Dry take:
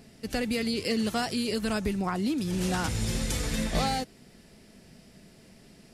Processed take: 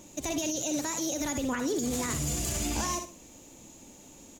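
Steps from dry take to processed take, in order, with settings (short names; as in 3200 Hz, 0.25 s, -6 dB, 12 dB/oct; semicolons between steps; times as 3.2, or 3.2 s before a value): bell 5100 Hz +13.5 dB 0.36 oct; speed mistake 33 rpm record played at 45 rpm; on a send: feedback echo 62 ms, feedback 25%, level -10.5 dB; on the sum: limiter -21.5 dBFS, peak gain reduction 9 dB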